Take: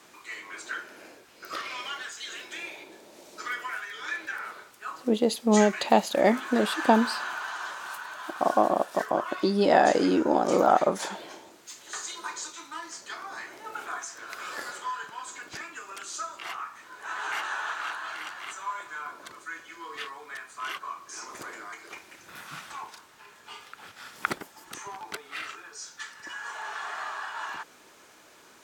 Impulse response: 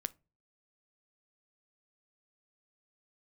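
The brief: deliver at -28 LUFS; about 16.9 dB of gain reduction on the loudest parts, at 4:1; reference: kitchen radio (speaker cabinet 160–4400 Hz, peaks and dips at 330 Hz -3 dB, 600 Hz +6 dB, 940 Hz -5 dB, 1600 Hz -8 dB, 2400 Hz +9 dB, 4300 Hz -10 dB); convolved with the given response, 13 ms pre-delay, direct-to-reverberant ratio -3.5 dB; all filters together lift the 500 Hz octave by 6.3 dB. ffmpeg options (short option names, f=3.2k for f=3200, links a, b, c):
-filter_complex "[0:a]equalizer=f=500:t=o:g=4.5,acompressor=threshold=-34dB:ratio=4,asplit=2[a][b];[1:a]atrim=start_sample=2205,adelay=13[c];[b][c]afir=irnorm=-1:irlink=0,volume=4.5dB[d];[a][d]amix=inputs=2:normalize=0,highpass=160,equalizer=f=330:t=q:w=4:g=-3,equalizer=f=600:t=q:w=4:g=6,equalizer=f=940:t=q:w=4:g=-5,equalizer=f=1.6k:t=q:w=4:g=-8,equalizer=f=2.4k:t=q:w=4:g=9,equalizer=f=4.3k:t=q:w=4:g=-10,lowpass=f=4.4k:w=0.5412,lowpass=f=4.4k:w=1.3066,volume=5.5dB"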